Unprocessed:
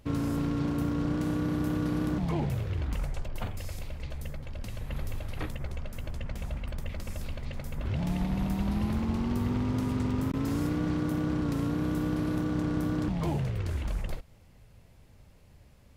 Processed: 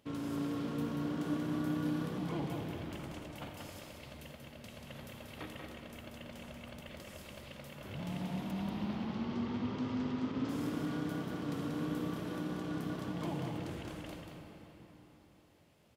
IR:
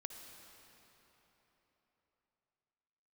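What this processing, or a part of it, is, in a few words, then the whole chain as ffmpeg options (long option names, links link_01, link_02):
PA in a hall: -filter_complex "[0:a]asettb=1/sr,asplit=3[link_01][link_02][link_03];[link_01]atrim=end=8.514[link_04];[link_02]atrim=start=8.51:end=10.49,asetpts=PTS-STARTPTS,afade=type=in:duration=0.004:curve=qsin,afade=type=out:start_time=1.976:duration=0.004:curve=qsin,lowpass=frequency=5700:width=0.5412,lowpass=frequency=5700:width=1.3066[link_05];[link_03]atrim=start=10.486[link_06];[link_04][link_05]acrossfade=duration=0.004:curve1=hsin:curve2=qsin[link_07];[link_07][link_06]acrossfade=duration=0.004:curve1=qsin:curve2=hsin,highpass=170,equalizer=frequency=3200:width_type=o:width=0.34:gain=5,aecho=1:1:186:0.562[link_08];[1:a]atrim=start_sample=2205[link_09];[link_08][link_09]afir=irnorm=-1:irlink=0,volume=-3dB"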